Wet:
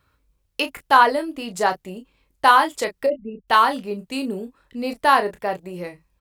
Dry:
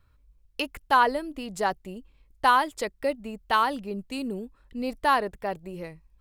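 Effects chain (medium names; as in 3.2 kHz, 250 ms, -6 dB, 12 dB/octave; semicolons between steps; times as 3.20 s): 3.06–3.48 s: resonances exaggerated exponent 3; high-pass 210 Hz 6 dB/octave; early reflections 22 ms -11 dB, 34 ms -10 dB; trim +6 dB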